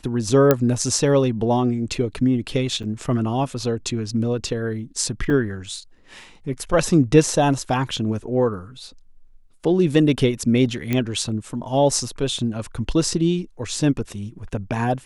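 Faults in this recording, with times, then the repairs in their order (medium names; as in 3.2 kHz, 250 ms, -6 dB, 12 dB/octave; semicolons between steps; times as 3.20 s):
0.51 s: pop -2 dBFS
2.83–2.84 s: dropout 6.7 ms
5.30 s: dropout 4 ms
10.93 s: pop -9 dBFS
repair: de-click; interpolate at 2.83 s, 6.7 ms; interpolate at 5.30 s, 4 ms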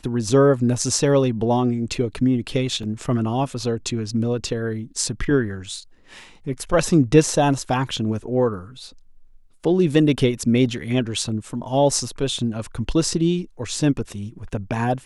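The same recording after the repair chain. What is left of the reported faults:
nothing left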